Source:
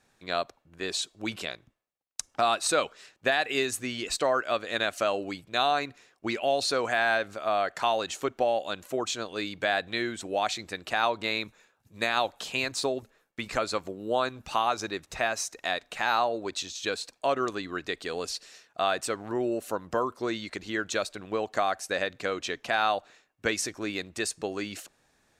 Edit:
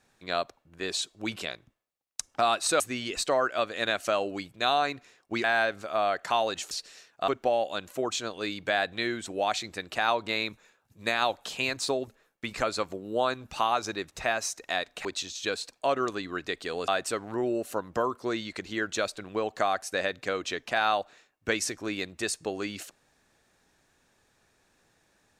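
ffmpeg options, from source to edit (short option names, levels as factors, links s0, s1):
-filter_complex "[0:a]asplit=7[s0][s1][s2][s3][s4][s5][s6];[s0]atrim=end=2.802[s7];[s1]atrim=start=3.728:end=6.372[s8];[s2]atrim=start=6.958:end=8.232[s9];[s3]atrim=start=18.278:end=18.852[s10];[s4]atrim=start=8.228:end=16.002[s11];[s5]atrim=start=16.448:end=18.282[s12];[s6]atrim=start=18.848[s13];[s7][s8]acrossfade=d=0.004:c1=hsin:c2=hsin[s14];[s14][s9]acrossfade=d=0.004:c1=hsin:c2=hsin[s15];[s15][s10]acrossfade=d=0.004:c1=hsin:c2=hsin[s16];[s16][s11]acrossfade=d=0.004:c1=hsin:c2=hsin[s17];[s17][s12]acrossfade=d=0.004:c1=hsin:c2=hsin[s18];[s18][s13]acrossfade=d=0.004:c1=hsin:c2=hsin"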